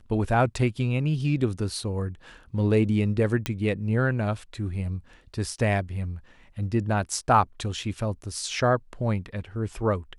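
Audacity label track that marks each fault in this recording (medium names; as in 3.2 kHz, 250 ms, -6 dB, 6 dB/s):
3.460000	3.460000	pop -11 dBFS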